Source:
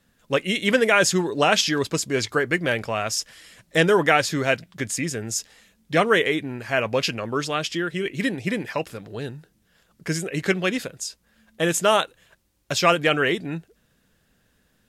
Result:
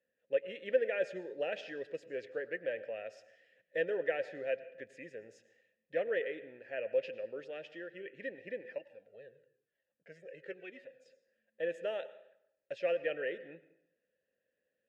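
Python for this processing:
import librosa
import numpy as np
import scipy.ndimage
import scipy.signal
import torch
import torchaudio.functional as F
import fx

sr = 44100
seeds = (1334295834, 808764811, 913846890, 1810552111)

y = fx.vowel_filter(x, sr, vowel='e')
y = fx.high_shelf(y, sr, hz=3200.0, db=-11.0)
y = fx.rev_plate(y, sr, seeds[0], rt60_s=0.78, hf_ratio=0.75, predelay_ms=85, drr_db=15.0)
y = fx.comb_cascade(y, sr, direction='falling', hz=1.0, at=(8.78, 11.06))
y = y * librosa.db_to_amplitude(-5.5)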